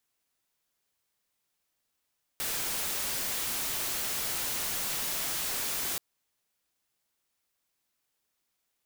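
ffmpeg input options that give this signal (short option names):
-f lavfi -i "anoisesrc=c=white:a=0.0411:d=3.58:r=44100:seed=1"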